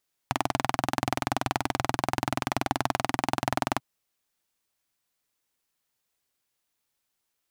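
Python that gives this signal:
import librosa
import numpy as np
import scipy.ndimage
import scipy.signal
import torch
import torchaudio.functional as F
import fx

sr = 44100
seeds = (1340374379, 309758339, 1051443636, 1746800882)

y = fx.engine_single(sr, seeds[0], length_s=3.49, rpm=2500, resonances_hz=(130.0, 270.0, 740.0))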